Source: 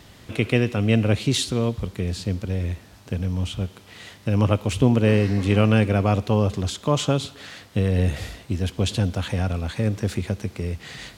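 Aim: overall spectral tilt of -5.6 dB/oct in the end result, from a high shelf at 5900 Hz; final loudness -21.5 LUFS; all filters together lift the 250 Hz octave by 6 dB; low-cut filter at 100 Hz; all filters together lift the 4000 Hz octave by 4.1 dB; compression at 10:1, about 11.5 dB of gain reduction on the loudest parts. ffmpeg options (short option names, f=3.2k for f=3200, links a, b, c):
-af "highpass=100,equalizer=f=250:t=o:g=7.5,equalizer=f=4k:t=o:g=6.5,highshelf=f=5.9k:g=-4.5,acompressor=threshold=-20dB:ratio=10,volume=5.5dB"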